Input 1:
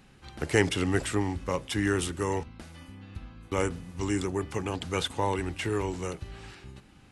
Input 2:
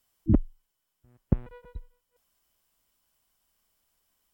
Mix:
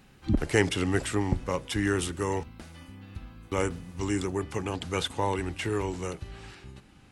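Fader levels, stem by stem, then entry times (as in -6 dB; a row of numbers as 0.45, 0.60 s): 0.0, -4.0 dB; 0.00, 0.00 s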